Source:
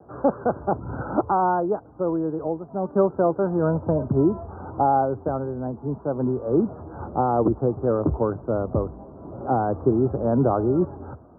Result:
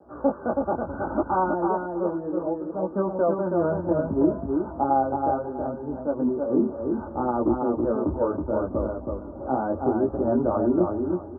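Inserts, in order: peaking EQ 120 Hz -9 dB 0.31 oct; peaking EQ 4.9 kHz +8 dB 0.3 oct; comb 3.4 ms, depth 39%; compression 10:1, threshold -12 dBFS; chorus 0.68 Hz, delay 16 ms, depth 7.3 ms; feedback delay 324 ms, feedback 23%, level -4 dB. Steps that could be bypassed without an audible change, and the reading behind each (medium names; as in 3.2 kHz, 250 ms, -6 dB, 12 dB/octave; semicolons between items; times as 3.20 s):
peaking EQ 4.9 kHz: input has nothing above 1.5 kHz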